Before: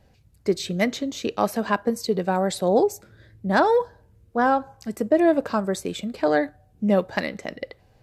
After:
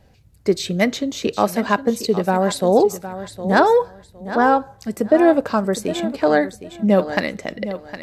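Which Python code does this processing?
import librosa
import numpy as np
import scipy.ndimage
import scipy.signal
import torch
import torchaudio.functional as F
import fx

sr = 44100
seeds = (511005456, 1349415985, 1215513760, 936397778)

y = fx.echo_feedback(x, sr, ms=761, feedback_pct=21, wet_db=-12.5)
y = y * 10.0 ** (4.5 / 20.0)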